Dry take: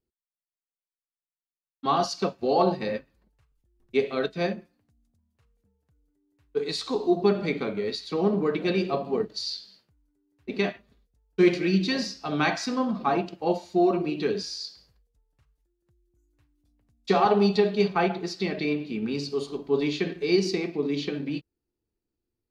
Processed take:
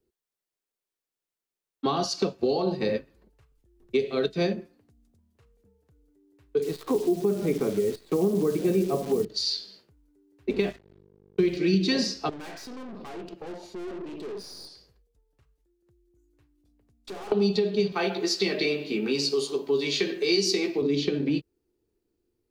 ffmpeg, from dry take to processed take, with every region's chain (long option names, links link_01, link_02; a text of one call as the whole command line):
ffmpeg -i in.wav -filter_complex "[0:a]asettb=1/sr,asplit=3[link_01][link_02][link_03];[link_01]atrim=end=6.624[link_04];[link_02]atrim=start=6.62:end=9.25,asetpts=PTS-STARTPTS,afade=type=in:duration=0.004:curve=qsin,afade=type=out:start_time=2.626:duration=0.004:curve=qsin,lowpass=1400,acrusher=bits=8:dc=4:mix=0:aa=0.000001[link_05];[link_03]atrim=start=9.246[link_06];[link_04][link_05]acrossfade=duration=0.004:curve1=hsin:curve2=qsin[link_07];[link_07][link_06]acrossfade=duration=0.004:curve1=qsin:curve2=hsin,asettb=1/sr,asplit=3[link_08][link_09][link_10];[link_08]atrim=end=10.504[link_11];[link_09]atrim=start=10.5:end=11.57,asetpts=PTS-STARTPTS,afade=type=in:duration=0.004:curve=qsin,afade=type=out:start_time=1.066:duration=0.004:curve=qsin,lowpass=3900,aeval=exprs='val(0)+0.00316*(sin(2*PI*50*n/s)+sin(2*PI*2*50*n/s)/2+sin(2*PI*3*50*n/s)/3+sin(2*PI*4*50*n/s)/4+sin(2*PI*5*50*n/s)/5)':channel_layout=same,aeval=exprs='sgn(val(0))*max(abs(val(0))-0.00355,0)':channel_layout=same[link_12];[link_10]atrim=start=11.566[link_13];[link_11][link_12]acrossfade=duration=0.004:curve1=hsin:curve2=qsin[link_14];[link_14][link_13]acrossfade=duration=0.004:curve1=qsin:curve2=hsin,asettb=1/sr,asplit=3[link_15][link_16][link_17];[link_15]atrim=end=12.294[link_18];[link_16]atrim=start=12.29:end=17.32,asetpts=PTS-STARTPTS,afade=type=in:duration=0.004:curve=qsin,afade=type=out:start_time=5.026:duration=0.004:curve=qsin,aeval=exprs='(tanh(63.1*val(0)+0.7)-tanh(0.7))/63.1':channel_layout=same,acompressor=threshold=-44dB:ratio=6:attack=3.2:release=140:knee=1:detection=peak[link_19];[link_17]atrim=start=17.316[link_20];[link_18][link_19]acrossfade=duration=0.004:curve1=hsin:curve2=qsin[link_21];[link_21][link_20]acrossfade=duration=0.004:curve1=qsin:curve2=hsin,asettb=1/sr,asplit=3[link_22][link_23][link_24];[link_22]atrim=end=17.924[link_25];[link_23]atrim=start=17.92:end=20.82,asetpts=PTS-STARTPTS,afade=type=in:duration=0.004:curve=qsin,afade=type=out:start_time=2.896:duration=0.004:curve=qsin,lowpass=frequency=3600:poles=1,aemphasis=mode=production:type=riaa,asplit=2[link_26][link_27];[link_27]adelay=15,volume=-4.5dB[link_28];[link_26][link_28]amix=inputs=2:normalize=0,atrim=end_sample=127890[link_29];[link_24]atrim=start=20.816[link_30];[link_25][link_29]acrossfade=duration=0.004:curve1=hsin:curve2=qsin[link_31];[link_31][link_30]acrossfade=duration=0.004:curve1=qsin:curve2=hsin,alimiter=limit=-15.5dB:level=0:latency=1:release=270,equalizer=frequency=400:width_type=o:width=0.83:gain=9,acrossover=split=190|3000[link_32][link_33][link_34];[link_33]acompressor=threshold=-29dB:ratio=6[link_35];[link_32][link_35][link_34]amix=inputs=3:normalize=0,volume=4.5dB" out.wav